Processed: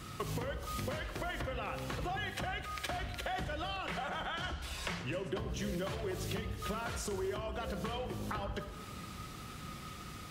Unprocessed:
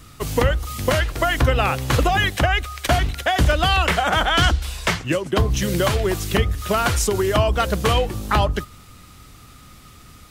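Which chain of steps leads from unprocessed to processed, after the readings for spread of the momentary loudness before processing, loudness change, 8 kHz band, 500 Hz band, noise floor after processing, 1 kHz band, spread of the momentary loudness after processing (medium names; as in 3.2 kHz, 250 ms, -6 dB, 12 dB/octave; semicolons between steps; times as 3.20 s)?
5 LU, -19.0 dB, -18.0 dB, -18.0 dB, -47 dBFS, -18.5 dB, 8 LU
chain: high-pass 100 Hz 6 dB/octave; treble shelf 6 kHz -7.5 dB; peak limiter -16 dBFS, peak gain reduction 9 dB; compression 16:1, threshold -36 dBFS, peak gain reduction 16.5 dB; simulated room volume 2100 m³, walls mixed, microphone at 1 m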